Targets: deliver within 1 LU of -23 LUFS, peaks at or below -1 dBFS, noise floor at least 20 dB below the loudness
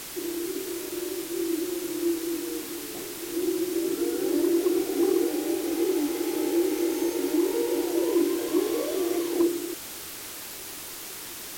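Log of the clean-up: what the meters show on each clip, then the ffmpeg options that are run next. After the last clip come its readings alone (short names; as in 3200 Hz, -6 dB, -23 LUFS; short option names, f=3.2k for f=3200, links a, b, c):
noise floor -39 dBFS; noise floor target -48 dBFS; loudness -27.5 LUFS; peak -14.0 dBFS; loudness target -23.0 LUFS
-> -af "afftdn=nr=9:nf=-39"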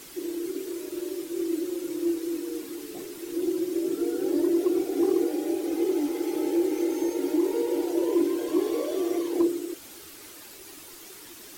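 noise floor -46 dBFS; noise floor target -48 dBFS
-> -af "afftdn=nr=6:nf=-46"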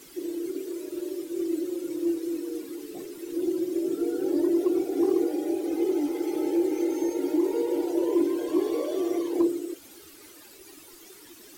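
noise floor -50 dBFS; loudness -27.5 LUFS; peak -15.0 dBFS; loudness target -23.0 LUFS
-> -af "volume=4.5dB"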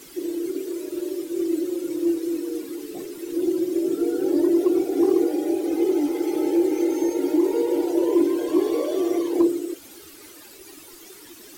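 loudness -23.0 LUFS; peak -10.5 dBFS; noise floor -45 dBFS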